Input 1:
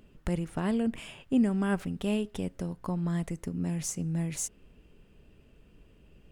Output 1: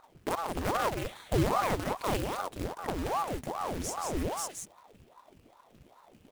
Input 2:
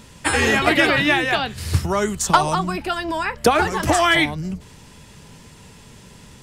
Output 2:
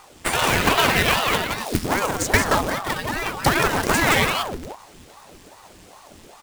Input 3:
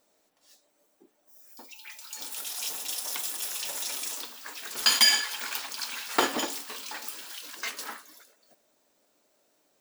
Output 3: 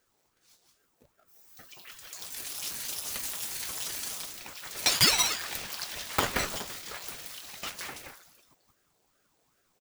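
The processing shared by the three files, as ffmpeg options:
-filter_complex "[0:a]acrusher=bits=2:mode=log:mix=0:aa=0.000001,aeval=exprs='0.668*(cos(1*acos(clip(val(0)/0.668,-1,1)))-cos(1*PI/2))+0.106*(cos(4*acos(clip(val(0)/0.668,-1,1)))-cos(4*PI/2))':c=same,asplit=2[a][b];[b]aecho=0:1:176:0.596[c];[a][c]amix=inputs=2:normalize=0,aeval=exprs='val(0)*sin(2*PI*550*n/s+550*0.85/2.5*sin(2*PI*2.5*n/s))':c=same,volume=-1dB"

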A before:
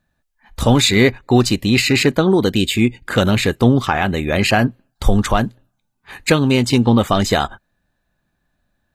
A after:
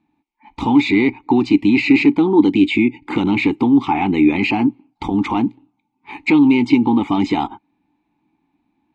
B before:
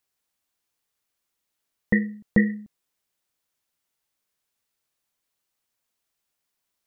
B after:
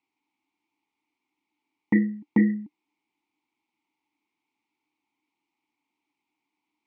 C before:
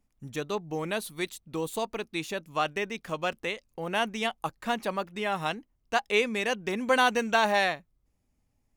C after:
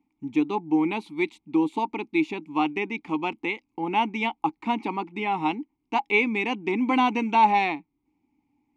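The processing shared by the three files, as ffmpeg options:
-filter_complex "[0:a]acrossover=split=6400[a][b];[b]acompressor=threshold=-38dB:ratio=4:attack=1:release=60[c];[a][c]amix=inputs=2:normalize=0,lowpass=10k,acompressor=threshold=-16dB:ratio=2.5,apsyclip=15.5dB,asplit=3[d][e][f];[d]bandpass=f=300:t=q:w=8,volume=0dB[g];[e]bandpass=f=870:t=q:w=8,volume=-6dB[h];[f]bandpass=f=2.24k:t=q:w=8,volume=-9dB[i];[g][h][i]amix=inputs=3:normalize=0,volume=3dB"

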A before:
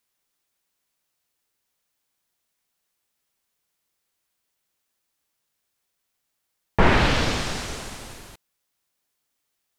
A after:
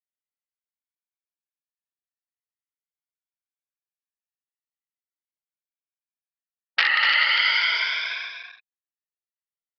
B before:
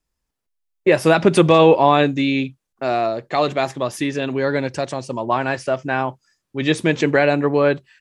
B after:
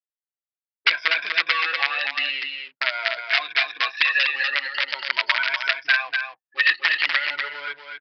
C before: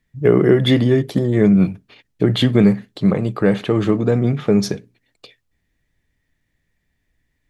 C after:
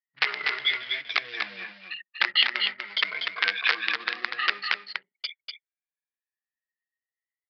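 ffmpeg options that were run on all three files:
-filter_complex "[0:a]afftfilt=real='re*pow(10,20/40*sin(2*PI*(1.7*log(max(b,1)*sr/1024/100)/log(2)-(0.43)*(pts-256)/sr)))':imag='im*pow(10,20/40*sin(2*PI*(1.7*log(max(b,1)*sr/1024/100)/log(2)-(0.43)*(pts-256)/sr)))':win_size=1024:overlap=0.75,acrossover=split=3800[a][b];[b]acompressor=threshold=-34dB:ratio=4:attack=1:release=60[c];[a][c]amix=inputs=2:normalize=0,aeval=exprs='2.11*(cos(1*acos(clip(val(0)/2.11,-1,1)))-cos(1*PI/2))+0.0376*(cos(2*acos(clip(val(0)/2.11,-1,1)))-cos(2*PI/2))+0.75*(cos(5*acos(clip(val(0)/2.11,-1,1)))-cos(5*PI/2))':c=same,acompressor=threshold=-14dB:ratio=20,aresample=16000,acrusher=bits=6:mode=log:mix=0:aa=0.000001,aresample=44100,flanger=delay=5.4:depth=1.2:regen=-17:speed=1.2:shape=sinusoidal,aeval=exprs='(mod(3.98*val(0)+1,2)-1)/3.98':c=same,anlmdn=6.31,highpass=f=1.9k:t=q:w=2.2,aecho=1:1:244:0.531,aresample=11025,aresample=44100,volume=1.5dB"

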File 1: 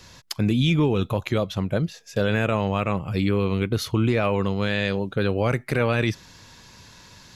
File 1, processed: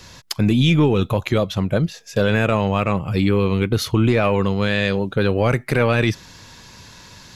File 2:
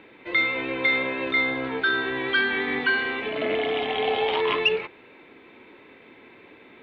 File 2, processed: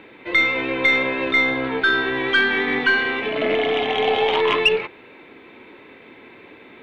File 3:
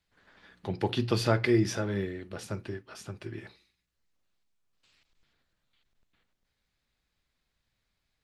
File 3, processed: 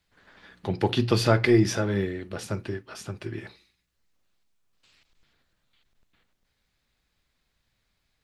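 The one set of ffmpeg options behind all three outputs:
-af "acontrast=28,aeval=exprs='0.501*(cos(1*acos(clip(val(0)/0.501,-1,1)))-cos(1*PI/2))+0.0141*(cos(4*acos(clip(val(0)/0.501,-1,1)))-cos(4*PI/2))':c=same"

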